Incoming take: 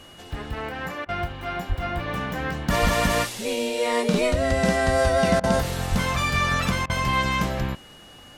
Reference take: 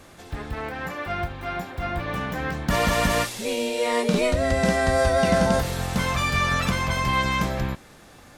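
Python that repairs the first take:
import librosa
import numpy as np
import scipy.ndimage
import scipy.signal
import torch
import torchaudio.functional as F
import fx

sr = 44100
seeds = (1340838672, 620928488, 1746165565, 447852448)

y = fx.notch(x, sr, hz=2900.0, q=30.0)
y = fx.highpass(y, sr, hz=140.0, slope=24, at=(1.68, 1.8), fade=0.02)
y = fx.highpass(y, sr, hz=140.0, slope=24, at=(2.81, 2.93), fade=0.02)
y = fx.highpass(y, sr, hz=140.0, slope=24, at=(5.9, 6.02), fade=0.02)
y = fx.fix_interpolate(y, sr, at_s=(1.05, 5.4, 6.86), length_ms=35.0)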